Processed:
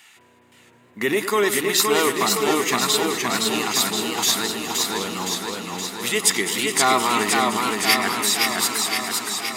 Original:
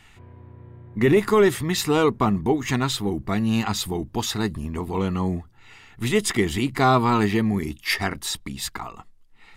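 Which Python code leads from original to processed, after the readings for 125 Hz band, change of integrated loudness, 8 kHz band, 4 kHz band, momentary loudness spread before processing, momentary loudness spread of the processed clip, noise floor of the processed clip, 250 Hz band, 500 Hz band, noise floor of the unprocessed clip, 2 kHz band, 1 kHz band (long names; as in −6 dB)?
−12.0 dB, +2.5 dB, +11.5 dB, +9.0 dB, 12 LU, 7 LU, −54 dBFS, −4.0 dB, −0.5 dB, −52 dBFS, +6.0 dB, +3.5 dB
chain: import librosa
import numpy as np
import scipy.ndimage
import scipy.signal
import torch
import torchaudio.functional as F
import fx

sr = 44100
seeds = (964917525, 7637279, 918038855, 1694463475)

y = scipy.signal.sosfilt(scipy.signal.butter(2, 200.0, 'highpass', fs=sr, output='sos'), x)
y = fx.tilt_eq(y, sr, slope=3.0)
y = fx.echo_alternate(y, sr, ms=104, hz=2400.0, feedback_pct=83, wet_db=-11)
y = fx.echo_warbled(y, sr, ms=518, feedback_pct=66, rate_hz=2.8, cents=92, wet_db=-3)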